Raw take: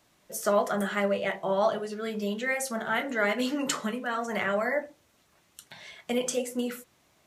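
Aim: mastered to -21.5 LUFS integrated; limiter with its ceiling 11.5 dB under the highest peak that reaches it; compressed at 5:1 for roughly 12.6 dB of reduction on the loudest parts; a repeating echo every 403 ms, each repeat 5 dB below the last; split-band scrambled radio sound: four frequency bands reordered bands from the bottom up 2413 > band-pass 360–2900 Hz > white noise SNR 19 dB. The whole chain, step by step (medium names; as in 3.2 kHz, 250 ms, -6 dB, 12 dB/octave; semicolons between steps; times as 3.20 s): compression 5:1, threshold -34 dBFS; peak limiter -31 dBFS; feedback delay 403 ms, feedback 56%, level -5 dB; four frequency bands reordered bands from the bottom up 2413; band-pass 360–2900 Hz; white noise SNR 19 dB; trim +19.5 dB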